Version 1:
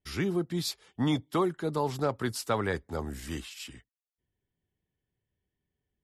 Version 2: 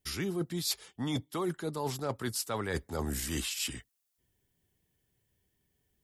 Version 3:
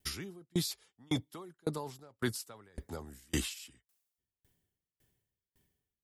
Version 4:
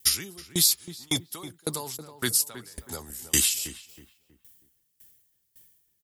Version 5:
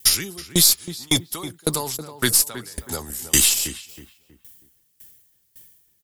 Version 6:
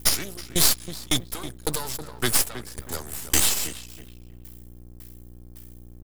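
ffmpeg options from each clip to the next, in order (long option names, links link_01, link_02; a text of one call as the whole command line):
ffmpeg -i in.wav -af "highshelf=frequency=4900:gain=11,areverse,acompressor=threshold=-36dB:ratio=12,areverse,volume=6dB" out.wav
ffmpeg -i in.wav -af "alimiter=level_in=2.5dB:limit=-24dB:level=0:latency=1:release=196,volume=-2.5dB,aeval=exprs='val(0)*pow(10,-36*if(lt(mod(1.8*n/s,1),2*abs(1.8)/1000),1-mod(1.8*n/s,1)/(2*abs(1.8)/1000),(mod(1.8*n/s,1)-2*abs(1.8)/1000)/(1-2*abs(1.8)/1000))/20)':channel_layout=same,volume=7dB" out.wav
ffmpeg -i in.wav -filter_complex "[0:a]crystalizer=i=6.5:c=0,asplit=2[link_01][link_02];[link_02]adelay=320,lowpass=frequency=1600:poles=1,volume=-11.5dB,asplit=2[link_03][link_04];[link_04]adelay=320,lowpass=frequency=1600:poles=1,volume=0.35,asplit=2[link_05][link_06];[link_06]adelay=320,lowpass=frequency=1600:poles=1,volume=0.35,asplit=2[link_07][link_08];[link_08]adelay=320,lowpass=frequency=1600:poles=1,volume=0.35[link_09];[link_01][link_03][link_05][link_07][link_09]amix=inputs=5:normalize=0,volume=1.5dB" out.wav
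ffmpeg -i in.wav -filter_complex "[0:a]asplit=2[link_01][link_02];[link_02]alimiter=limit=-14dB:level=0:latency=1:release=81,volume=1dB[link_03];[link_01][link_03]amix=inputs=2:normalize=0,aeval=exprs='0.708*(cos(1*acos(clip(val(0)/0.708,-1,1)))-cos(1*PI/2))+0.0251*(cos(8*acos(clip(val(0)/0.708,-1,1)))-cos(8*PI/2))':channel_layout=same,volume=1.5dB" out.wav
ffmpeg -i in.wav -af "aeval=exprs='val(0)+0.00891*(sin(2*PI*60*n/s)+sin(2*PI*2*60*n/s)/2+sin(2*PI*3*60*n/s)/3+sin(2*PI*4*60*n/s)/4+sin(2*PI*5*60*n/s)/5)':channel_layout=same,aeval=exprs='max(val(0),0)':channel_layout=same,volume=1.5dB" out.wav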